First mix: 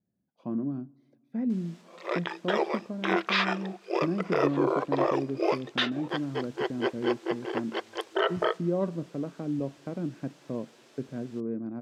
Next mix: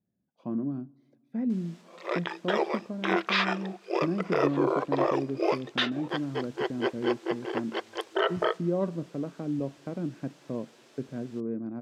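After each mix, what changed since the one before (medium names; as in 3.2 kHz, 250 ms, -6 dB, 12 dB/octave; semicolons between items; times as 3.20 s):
no change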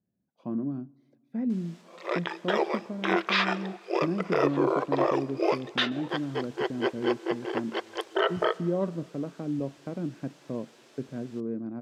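background: send +9.5 dB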